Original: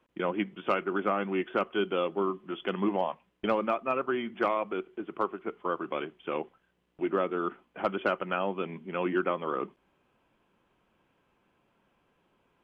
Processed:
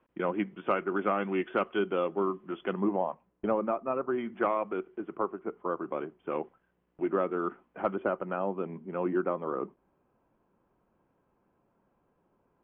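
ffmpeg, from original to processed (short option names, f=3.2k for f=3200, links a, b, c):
-af "asetnsamples=n=441:p=0,asendcmd='1.01 lowpass f 3200;1.79 lowpass f 2000;2.73 lowpass f 1100;4.18 lowpass f 1800;5.15 lowpass f 1200;6.3 lowpass f 1700;7.94 lowpass f 1100',lowpass=2.1k"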